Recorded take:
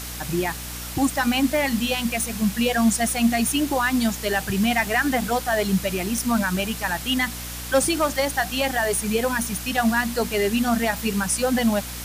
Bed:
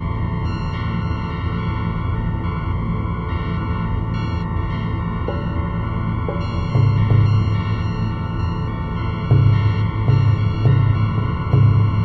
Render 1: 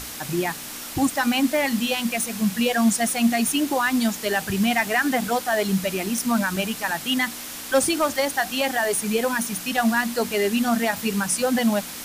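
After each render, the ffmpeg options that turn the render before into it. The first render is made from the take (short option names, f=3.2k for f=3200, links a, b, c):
-af "bandreject=f=60:t=h:w=6,bandreject=f=120:t=h:w=6,bandreject=f=180:t=h:w=6"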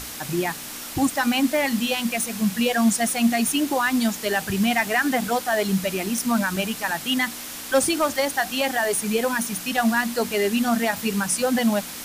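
-af anull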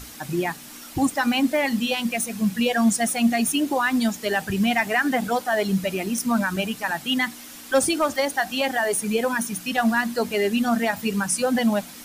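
-af "afftdn=nr=8:nf=-35"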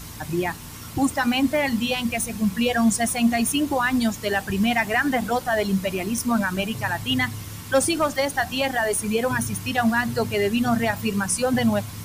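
-filter_complex "[1:a]volume=-19dB[a];[0:a][a]amix=inputs=2:normalize=0"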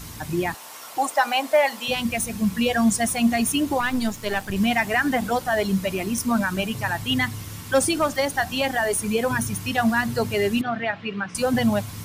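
-filter_complex "[0:a]asettb=1/sr,asplit=3[a][b][c];[a]atrim=end=0.544[d];[b]atrim=start=0.54:end=1.88,asetpts=PTS-STARTPTS,afade=t=in:d=0.004:c=qsin,afade=t=out:st=1.336:d=0.004:c=qsin,highpass=f=650:t=q:w=2.3[e];[c]atrim=start=1.876[f];[d][e]acrossfade=d=0.004:c1=hsin:c2=qsin[g];[g][f]acrossfade=d=0.004:c1=qsin:c2=hsin,asettb=1/sr,asplit=3[h][i][j];[h]atrim=end=3.804[k];[i]atrim=start=3.8:end=4.56,asetpts=PTS-STARTPTS,afade=t=in:d=0.004:c=qsin,afade=t=out:st=0.756:d=0.004:c=qsin,aeval=exprs='if(lt(val(0),0),0.447*val(0),val(0))':c=same[l];[j]atrim=start=4.556[m];[k][l]acrossfade=d=0.004:c1=hsin:c2=qsin[n];[n][m]acrossfade=d=0.004:c1=qsin:c2=hsin,asettb=1/sr,asplit=3[o][p][q];[o]atrim=end=10.614[r];[p]atrim=start=10.61:end=11.35,asetpts=PTS-STARTPTS,afade=t=in:d=0.004:c=qsin,afade=t=out:st=0.736:d=0.004:c=qsin,highpass=210,equalizer=f=240:t=q:w=4:g=-8,equalizer=f=480:t=q:w=4:g=-6,equalizer=f=970:t=q:w=4:g=-7,lowpass=f=3.3k:w=0.5412,lowpass=f=3.3k:w=1.3066[s];[q]atrim=start=11.346[t];[r][s]acrossfade=d=0.004:c1=hsin:c2=qsin[u];[u][t]acrossfade=d=0.004:c1=qsin:c2=hsin"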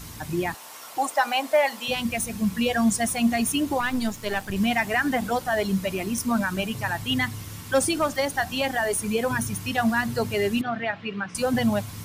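-af "volume=-2dB"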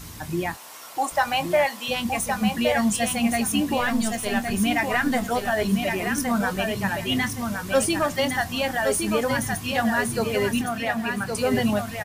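-filter_complex "[0:a]asplit=2[a][b];[b]adelay=24,volume=-13dB[c];[a][c]amix=inputs=2:normalize=0,aecho=1:1:1116|2232|3348:0.562|0.135|0.0324"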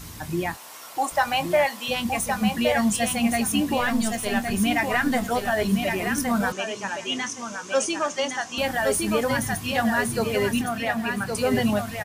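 -filter_complex "[0:a]asettb=1/sr,asplit=3[a][b][c];[a]atrim=end=6.524[d];[b]atrim=start=6.52:end=8.58,asetpts=PTS-STARTPTS,afade=t=in:d=0.004:c=qsin,afade=t=out:st=2.056:d=0.004:c=qsin,highpass=370,equalizer=f=710:t=q:w=4:g=-5,equalizer=f=1.9k:t=q:w=4:g=-6,equalizer=f=4.1k:t=q:w=4:g=-6,equalizer=f=6.3k:t=q:w=4:g=9,lowpass=f=7.8k:w=0.5412,lowpass=f=7.8k:w=1.3066[e];[c]atrim=start=8.576[f];[d][e]acrossfade=d=0.004:c1=hsin:c2=qsin[g];[g][f]acrossfade=d=0.004:c1=qsin:c2=hsin"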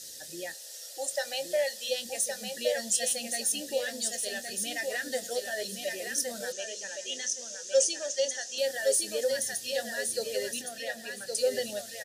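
-filter_complex "[0:a]asplit=3[a][b][c];[a]bandpass=f=530:t=q:w=8,volume=0dB[d];[b]bandpass=f=1.84k:t=q:w=8,volume=-6dB[e];[c]bandpass=f=2.48k:t=q:w=8,volume=-9dB[f];[d][e][f]amix=inputs=3:normalize=0,aexciter=amount=14.4:drive=8.9:freq=4k"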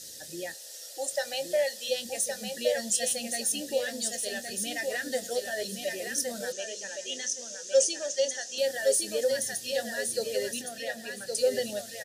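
-af "lowshelf=f=410:g=5"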